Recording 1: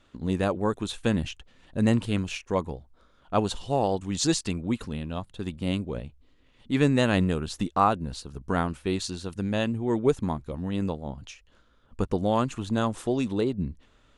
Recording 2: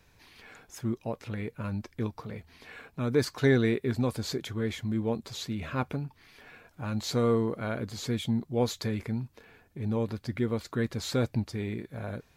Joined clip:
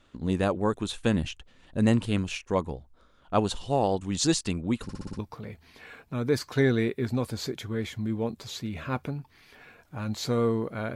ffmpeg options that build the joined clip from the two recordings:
-filter_complex "[0:a]apad=whole_dur=10.95,atrim=end=10.95,asplit=6[a][b][c][d][e][f];[a]atrim=end=4.892[g];[b]atrim=start=4.828:end=4.892[h];[c]atrim=start=4.828:end=4.892[i];[d]atrim=start=4.828:end=4.892[j];[e]atrim=start=4.828:end=4.892[k];[f]atrim=start=4.828:end=4.892[l];[1:a]atrim=start=2.048:end=7.81[m];[g][h]acrossfade=d=0.004:c1=hsin:c2=hsin[n];[n][i]acrossfade=d=0.004:c1=hsin:c2=hsin[o];[o][j]acrossfade=d=0.004:c1=hsin:c2=hsin[p];[p][k]acrossfade=d=0.004:c1=hsin:c2=hsin[q];[q][l]acrossfade=d=0.004:c1=hsin:c2=hsin[r];[r][m]acrossfade=d=0.004:c1=hsin:c2=hsin"

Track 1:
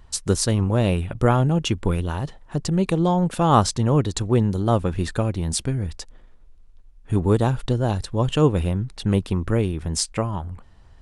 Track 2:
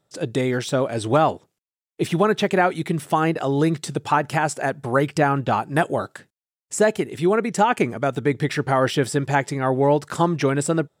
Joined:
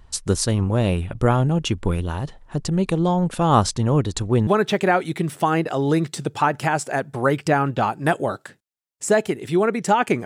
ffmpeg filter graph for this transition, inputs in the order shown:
-filter_complex "[0:a]apad=whole_dur=10.25,atrim=end=10.25,atrim=end=4.472[a];[1:a]atrim=start=2.168:end=7.95[b];[a][b]acrossfade=d=0.004:c1=hsin:c2=hsin"

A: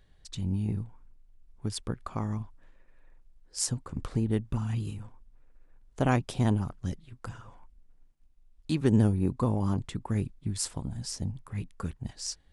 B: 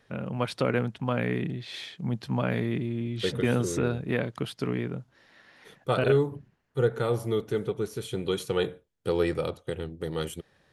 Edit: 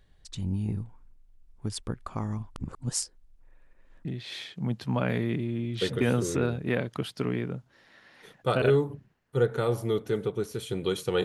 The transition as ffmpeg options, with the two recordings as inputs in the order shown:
-filter_complex "[0:a]apad=whole_dur=11.24,atrim=end=11.24,asplit=2[a][b];[a]atrim=end=2.562[c];[b]atrim=start=2.558:end=4.052,asetpts=PTS-STARTPTS,areverse[d];[1:a]atrim=start=1.468:end=8.66[e];[c][d]acrossfade=d=0.004:c1=hsin:c2=hsin[f];[f][e]acrossfade=d=0.004:c1=hsin:c2=hsin"

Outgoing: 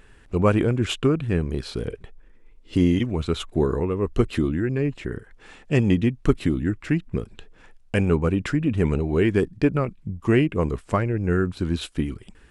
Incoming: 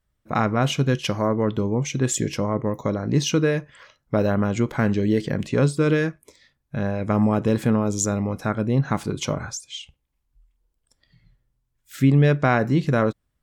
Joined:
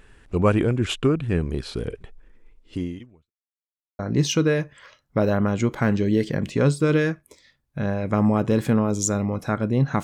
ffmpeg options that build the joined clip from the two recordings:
-filter_complex "[0:a]apad=whole_dur=10.03,atrim=end=10.03,asplit=2[a][b];[a]atrim=end=3.31,asetpts=PTS-STARTPTS,afade=t=out:st=2.46:d=0.85:c=qua[c];[b]atrim=start=3.31:end=3.99,asetpts=PTS-STARTPTS,volume=0[d];[1:a]atrim=start=2.96:end=9,asetpts=PTS-STARTPTS,afade=t=in:d=0.004:c=hsin[e];[c][d][e]concat=n=3:v=0:a=1"

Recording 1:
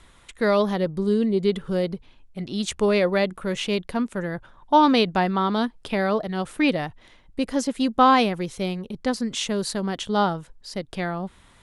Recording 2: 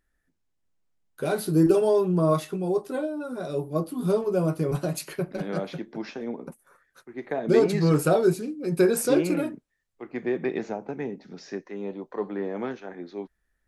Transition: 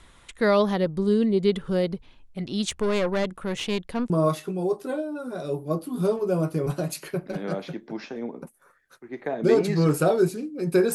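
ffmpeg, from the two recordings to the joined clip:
-filter_complex "[0:a]asettb=1/sr,asplit=3[a][b][c];[a]atrim=end=2.704[d];[b]atrim=start=2.7:end=4.1,asetpts=PTS-STARTPTS,afade=t=in:d=0.004:c=qsin,afade=t=out:st=1.396:d=0.004:c=qsin,aeval=exprs='(tanh(8.91*val(0)+0.5)-tanh(0.5))/8.91':c=same[e];[c]atrim=start=4.096[f];[d][e]acrossfade=d=0.004:c1=hsin:c2=qsin[g];[g][f]acrossfade=d=0.004:c1=qsin:c2=hsin,apad=whole_dur=10.94,atrim=end=10.94,atrim=end=4.102[h];[1:a]atrim=start=2.148:end=8.99[i];[h][i]acrossfade=d=0.004:c1=hsin:c2=hsin"

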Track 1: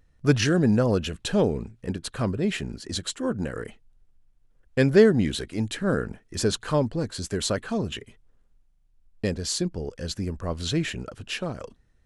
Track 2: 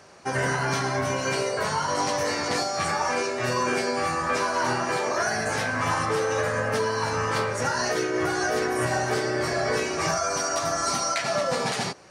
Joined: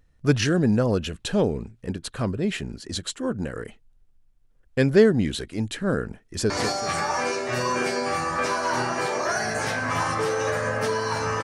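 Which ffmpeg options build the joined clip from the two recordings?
-filter_complex "[0:a]apad=whole_dur=11.43,atrim=end=11.43,atrim=end=6.502[a];[1:a]atrim=start=2.408:end=7.34[b];[a][b]acrossfade=d=0.004:c1=hsin:c2=hsin,asplit=2[c][d];[d]afade=t=in:st=6.23:d=0.01,afade=t=out:st=6.5:d=0.01,aecho=0:1:190|380|570|760:0.446684|0.156339|0.0547187|0.0191516[e];[c][e]amix=inputs=2:normalize=0"

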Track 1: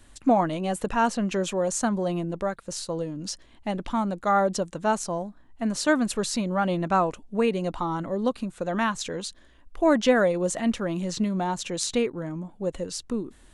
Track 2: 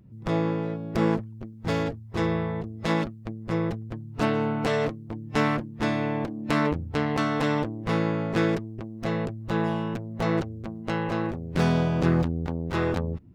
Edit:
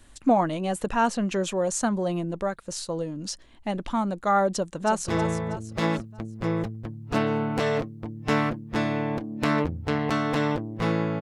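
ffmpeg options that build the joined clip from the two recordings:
-filter_complex "[0:a]apad=whole_dur=11.21,atrim=end=11.21,atrim=end=5.082[a];[1:a]atrim=start=2.148:end=8.28[b];[a][b]acrossfade=d=0.004:c1=hsin:c2=hsin,asplit=2[c][d];[d]afade=t=in:st=4.48:d=0.01,afade=t=out:st=5.08:d=0.01,aecho=0:1:320|640|960|1280|1600:0.375837|0.169127|0.0761071|0.0342482|0.0154117[e];[c][e]amix=inputs=2:normalize=0"

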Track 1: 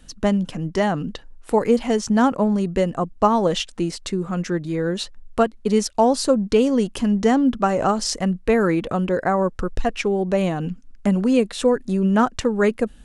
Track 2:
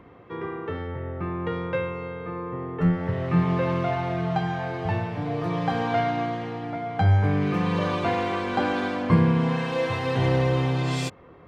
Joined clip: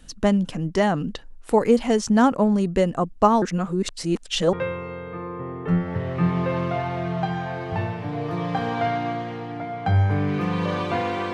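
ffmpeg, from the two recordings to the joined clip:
-filter_complex "[0:a]apad=whole_dur=11.33,atrim=end=11.33,asplit=2[a][b];[a]atrim=end=3.422[c];[b]atrim=start=3.418:end=4.532,asetpts=PTS-STARTPTS,areverse[d];[1:a]atrim=start=1.658:end=8.46[e];[c][d]acrossfade=d=0.004:c1=hsin:c2=hsin[f];[f][e]acrossfade=d=0.004:c1=hsin:c2=hsin"

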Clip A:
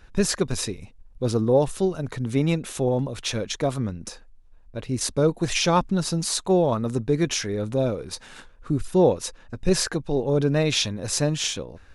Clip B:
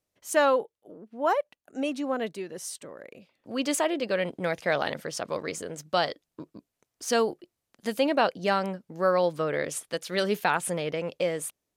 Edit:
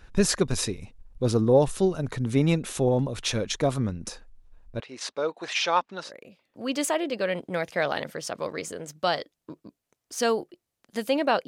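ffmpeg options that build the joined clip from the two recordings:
-filter_complex "[0:a]asettb=1/sr,asplit=3[a][b][c];[a]atrim=end=4.804[d];[b]atrim=start=4.8:end=6.12,asetpts=PTS-STARTPTS,afade=t=in:d=0.004:c=qsin,afade=t=out:st=1.316:d=0.004:c=qsin,highpass=670,lowpass=4.1k[e];[c]atrim=start=6.116[f];[d][e]acrossfade=d=0.004:c1=hsin:c2=qsin[g];[g][f]acrossfade=d=0.004:c1=qsin:c2=hsin,apad=whole_dur=11.47,atrim=end=11.47,atrim=end=6.12,asetpts=PTS-STARTPTS[h];[1:a]atrim=start=2.92:end=8.37,asetpts=PTS-STARTPTS[i];[h][i]acrossfade=d=0.1:c1=tri:c2=tri"

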